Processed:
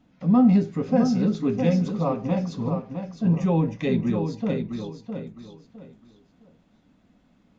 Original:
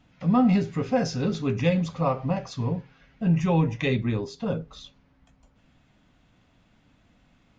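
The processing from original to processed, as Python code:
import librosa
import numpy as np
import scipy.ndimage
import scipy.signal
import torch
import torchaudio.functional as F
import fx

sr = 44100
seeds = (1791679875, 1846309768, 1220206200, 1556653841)

p1 = fx.curve_eq(x, sr, hz=(130.0, 200.0, 2800.0, 4000.0), db=(0, 10, -2, 1))
p2 = p1 + fx.echo_feedback(p1, sr, ms=659, feedback_pct=27, wet_db=-7, dry=0)
y = F.gain(torch.from_numpy(p2), -5.5).numpy()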